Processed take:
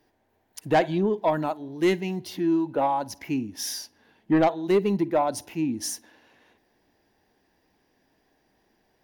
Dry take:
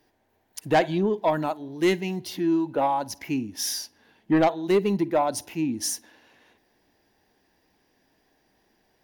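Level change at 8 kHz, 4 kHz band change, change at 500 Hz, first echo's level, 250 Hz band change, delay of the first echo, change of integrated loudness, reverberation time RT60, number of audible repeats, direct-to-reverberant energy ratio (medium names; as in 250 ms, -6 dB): -3.0 dB, -3.0 dB, 0.0 dB, no echo, 0.0 dB, no echo, -0.5 dB, no reverb, no echo, no reverb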